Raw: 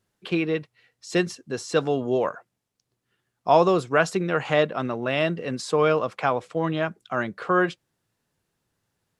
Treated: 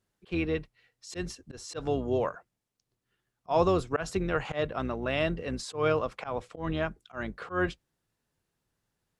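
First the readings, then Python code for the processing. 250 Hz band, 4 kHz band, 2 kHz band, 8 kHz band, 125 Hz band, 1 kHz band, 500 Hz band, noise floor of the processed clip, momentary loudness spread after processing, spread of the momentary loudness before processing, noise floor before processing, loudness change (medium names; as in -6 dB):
-6.5 dB, -7.0 dB, -8.0 dB, -5.5 dB, -4.5 dB, -8.5 dB, -7.0 dB, -84 dBFS, 12 LU, 8 LU, -80 dBFS, -7.0 dB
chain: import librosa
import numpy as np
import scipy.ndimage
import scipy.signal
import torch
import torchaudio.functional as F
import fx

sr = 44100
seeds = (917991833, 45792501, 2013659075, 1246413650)

y = fx.octave_divider(x, sr, octaves=2, level_db=-5.0)
y = fx.auto_swell(y, sr, attack_ms=140.0)
y = y * 10.0 ** (-5.0 / 20.0)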